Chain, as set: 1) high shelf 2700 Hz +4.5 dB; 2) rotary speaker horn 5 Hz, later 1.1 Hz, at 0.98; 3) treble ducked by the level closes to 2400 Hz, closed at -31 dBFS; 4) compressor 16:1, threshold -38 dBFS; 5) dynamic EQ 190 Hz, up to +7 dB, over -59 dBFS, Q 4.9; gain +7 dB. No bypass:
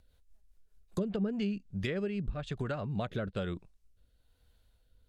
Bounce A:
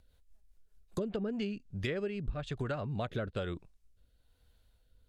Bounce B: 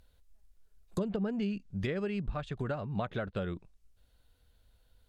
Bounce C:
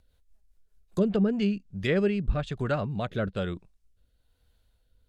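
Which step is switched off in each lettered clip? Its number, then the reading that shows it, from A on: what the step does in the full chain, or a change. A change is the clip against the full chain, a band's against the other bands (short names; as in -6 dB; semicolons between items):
5, momentary loudness spread change -2 LU; 2, 4 kHz band -2.5 dB; 4, mean gain reduction 5.0 dB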